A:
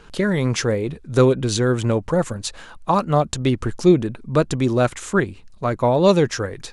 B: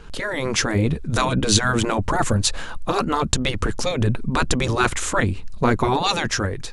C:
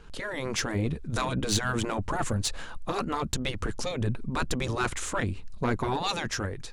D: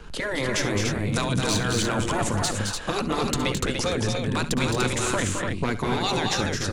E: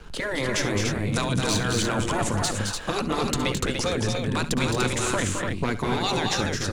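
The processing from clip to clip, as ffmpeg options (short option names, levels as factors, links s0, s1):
-af "afftfilt=real='re*lt(hypot(re,im),0.447)':imag='im*lt(hypot(re,im),0.447)':win_size=1024:overlap=0.75,lowshelf=f=130:g=8,dynaudnorm=f=200:g=7:m=2.24,volume=1.12"
-af "aeval=exprs='(tanh(2.82*val(0)+0.3)-tanh(0.3))/2.82':c=same,volume=0.422"
-filter_complex "[0:a]acrossover=split=100|690|1900[s0][s1][s2][s3];[s0]acompressor=threshold=0.00631:ratio=4[s4];[s1]acompressor=threshold=0.02:ratio=4[s5];[s2]acompressor=threshold=0.00631:ratio=4[s6];[s3]acompressor=threshold=0.0178:ratio=4[s7];[s4][s5][s6][s7]amix=inputs=4:normalize=0,aecho=1:1:63|70|215|236|293:0.112|0.158|0.501|0.335|0.596,volume=2.51"
-af "aeval=exprs='sgn(val(0))*max(abs(val(0))-0.00188,0)':c=same"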